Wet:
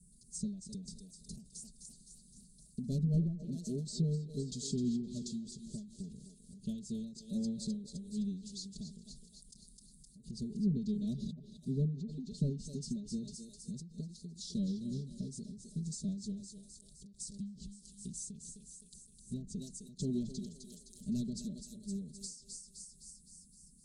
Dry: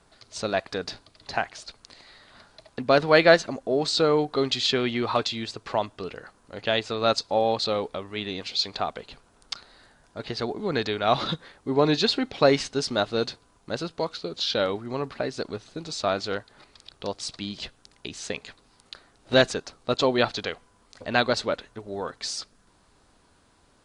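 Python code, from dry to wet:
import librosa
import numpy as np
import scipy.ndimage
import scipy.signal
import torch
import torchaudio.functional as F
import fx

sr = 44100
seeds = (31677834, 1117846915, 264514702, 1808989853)

p1 = fx.low_shelf(x, sr, hz=250.0, db=-7.0)
p2 = fx.clip_asym(p1, sr, top_db=-10.5, bottom_db=-8.0)
p3 = scipy.signal.sosfilt(scipy.signal.ellip(3, 1.0, 70, [190.0, 8600.0], 'bandstop', fs=sr, output='sos'), p2)
p4 = p3 + 1.0 * np.pad(p3, (int(4.9 * sr / 1000.0), 0))[:len(p3)]
p5 = p4 + fx.echo_thinned(p4, sr, ms=258, feedback_pct=59, hz=500.0, wet_db=-7.0, dry=0)
p6 = fx.env_lowpass_down(p5, sr, base_hz=1200.0, full_db=-30.0)
p7 = fx.end_taper(p6, sr, db_per_s=100.0)
y = p7 * 10.0 ** (5.5 / 20.0)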